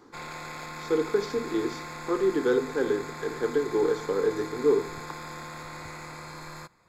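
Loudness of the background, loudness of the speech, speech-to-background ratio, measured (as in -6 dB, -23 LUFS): -39.0 LUFS, -27.5 LUFS, 11.5 dB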